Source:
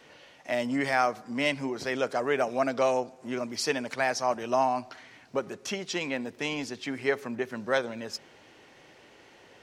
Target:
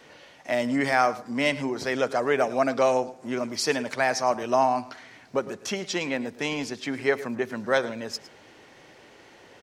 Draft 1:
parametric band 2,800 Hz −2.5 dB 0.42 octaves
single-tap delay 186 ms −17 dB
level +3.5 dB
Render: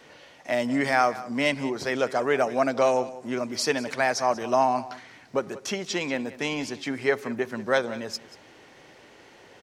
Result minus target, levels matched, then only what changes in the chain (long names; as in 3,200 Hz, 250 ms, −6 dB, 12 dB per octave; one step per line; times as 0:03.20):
echo 78 ms late
change: single-tap delay 108 ms −17 dB